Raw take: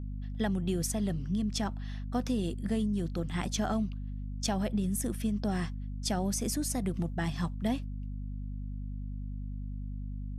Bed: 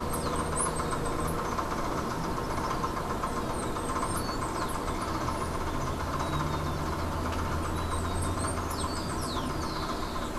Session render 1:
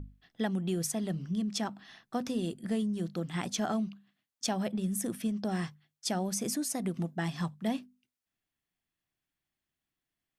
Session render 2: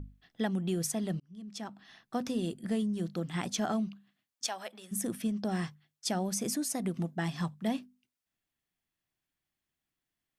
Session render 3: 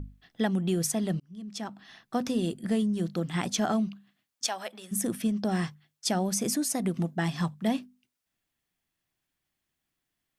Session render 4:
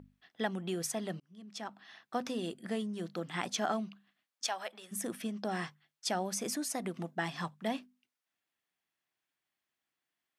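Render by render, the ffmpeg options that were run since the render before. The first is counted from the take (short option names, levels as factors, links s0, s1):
-af "bandreject=f=50:t=h:w=6,bandreject=f=100:t=h:w=6,bandreject=f=150:t=h:w=6,bandreject=f=200:t=h:w=6,bandreject=f=250:t=h:w=6"
-filter_complex "[0:a]asplit=3[s0][s1][s2];[s0]afade=t=out:st=4.46:d=0.02[s3];[s1]highpass=790,afade=t=in:st=4.46:d=0.02,afade=t=out:st=4.91:d=0.02[s4];[s2]afade=t=in:st=4.91:d=0.02[s5];[s3][s4][s5]amix=inputs=3:normalize=0,asplit=2[s6][s7];[s6]atrim=end=1.2,asetpts=PTS-STARTPTS,afade=t=out:st=1.196:d=0.004:c=hsin[s8];[s7]atrim=start=1.2,asetpts=PTS-STARTPTS,afade=t=in:d=0.99[s9];[s8][s9]concat=n=2:v=0:a=1"
-af "volume=1.68"
-af "highpass=f=700:p=1,highshelf=f=4100:g=-9"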